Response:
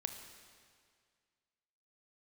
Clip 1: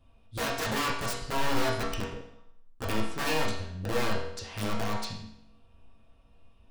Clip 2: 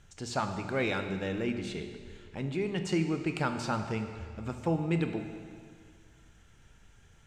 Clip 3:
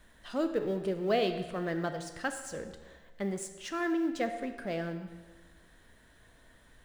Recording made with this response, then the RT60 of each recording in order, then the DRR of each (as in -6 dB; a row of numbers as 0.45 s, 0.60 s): 2; 0.75 s, 2.0 s, 1.3 s; -5.0 dB, 6.0 dB, 7.0 dB